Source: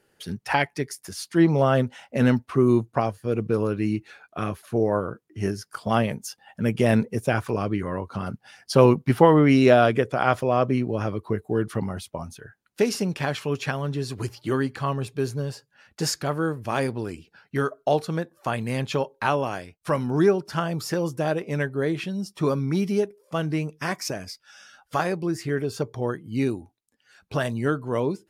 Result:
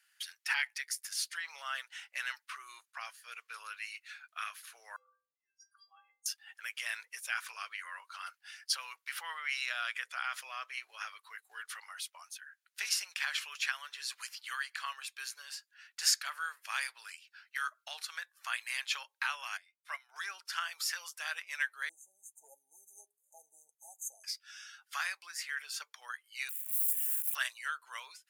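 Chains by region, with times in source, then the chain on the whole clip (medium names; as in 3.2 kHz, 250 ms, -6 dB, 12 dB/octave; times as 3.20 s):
4.96–6.26 s: spectral contrast enhancement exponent 2.2 + peaking EQ 250 Hz -8 dB 1.8 oct + inharmonic resonator 240 Hz, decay 0.55 s, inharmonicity 0.03
19.57–20.16 s: dynamic bell 7.7 kHz, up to -5 dB, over -51 dBFS, Q 0.97 + small resonant body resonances 690/2100/3600 Hz, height 14 dB, ringing for 40 ms + upward expansion 2.5:1, over -30 dBFS
21.89–24.24 s: brick-wall FIR band-stop 910–6100 Hz + bass shelf 360 Hz +10 dB + flange 1.4 Hz, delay 3.1 ms, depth 3.1 ms, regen +38%
26.49–27.35 s: zero-crossing glitches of -26 dBFS + Butterworth band-stop 4.8 kHz, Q 0.88 + pre-emphasis filter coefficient 0.97
whole clip: peak limiter -14 dBFS; inverse Chebyshev high-pass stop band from 250 Hz, stop band 80 dB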